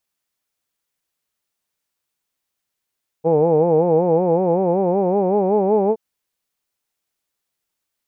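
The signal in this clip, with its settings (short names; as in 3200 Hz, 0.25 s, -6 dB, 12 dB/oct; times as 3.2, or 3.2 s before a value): formant vowel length 2.72 s, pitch 156 Hz, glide +5 st, vibrato depth 1.2 st, F1 470 Hz, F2 840 Hz, F3 2400 Hz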